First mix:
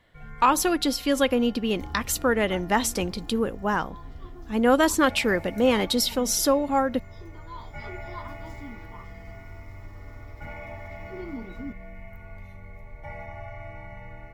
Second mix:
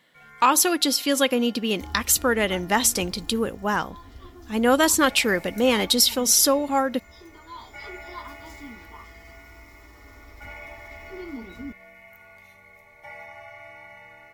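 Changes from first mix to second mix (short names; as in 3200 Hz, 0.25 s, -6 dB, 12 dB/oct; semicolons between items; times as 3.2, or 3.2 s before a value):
first sound: add HPF 790 Hz 6 dB/oct; master: add high shelf 2800 Hz +9 dB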